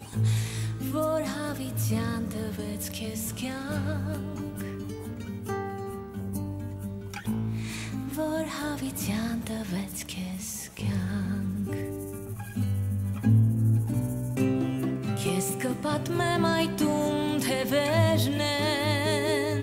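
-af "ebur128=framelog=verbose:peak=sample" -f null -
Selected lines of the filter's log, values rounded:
Integrated loudness:
  I:         -29.1 LUFS
  Threshold: -39.1 LUFS
Loudness range:
  LRA:         8.3 LU
  Threshold: -49.5 LUFS
  LRA low:   -34.1 LUFS
  LRA high:  -25.8 LUFS
Sample peak:
  Peak:      -12.1 dBFS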